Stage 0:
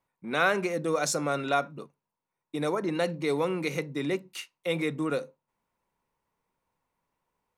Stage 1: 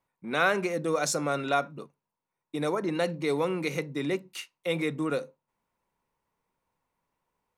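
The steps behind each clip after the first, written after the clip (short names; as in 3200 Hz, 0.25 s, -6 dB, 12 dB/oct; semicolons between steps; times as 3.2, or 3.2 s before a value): nothing audible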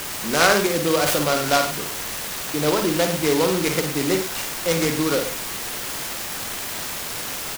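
requantised 6-bit, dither triangular; on a send: tapped delay 53/109 ms -6/-11.5 dB; on the sum: noise-modulated delay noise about 3400 Hz, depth 0.066 ms; gain +7 dB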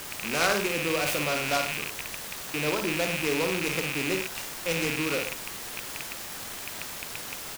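rattling part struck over -37 dBFS, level -11 dBFS; gain -8.5 dB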